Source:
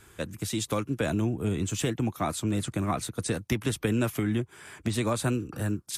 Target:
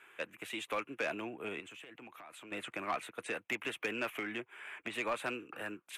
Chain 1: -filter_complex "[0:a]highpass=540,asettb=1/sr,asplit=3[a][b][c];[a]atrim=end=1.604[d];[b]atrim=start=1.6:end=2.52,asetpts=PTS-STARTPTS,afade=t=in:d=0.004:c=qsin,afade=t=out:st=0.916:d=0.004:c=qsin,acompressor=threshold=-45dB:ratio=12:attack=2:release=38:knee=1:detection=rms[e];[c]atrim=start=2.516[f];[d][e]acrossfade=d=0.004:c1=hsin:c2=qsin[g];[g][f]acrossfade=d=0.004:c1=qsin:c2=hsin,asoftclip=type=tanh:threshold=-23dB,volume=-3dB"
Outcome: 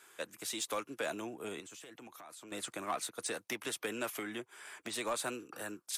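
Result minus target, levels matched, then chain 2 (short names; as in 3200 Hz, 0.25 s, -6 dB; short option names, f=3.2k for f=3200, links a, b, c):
8000 Hz band +12.5 dB
-filter_complex "[0:a]highpass=540,highshelf=f=3.6k:t=q:w=3:g=-11.5,asettb=1/sr,asplit=3[a][b][c];[a]atrim=end=1.604[d];[b]atrim=start=1.6:end=2.52,asetpts=PTS-STARTPTS,afade=t=in:d=0.004:c=qsin,afade=t=out:st=0.916:d=0.004:c=qsin,acompressor=threshold=-45dB:ratio=12:attack=2:release=38:knee=1:detection=rms[e];[c]atrim=start=2.516[f];[d][e]acrossfade=d=0.004:c1=hsin:c2=qsin[g];[g][f]acrossfade=d=0.004:c1=qsin:c2=hsin,asoftclip=type=tanh:threshold=-23dB,volume=-3dB"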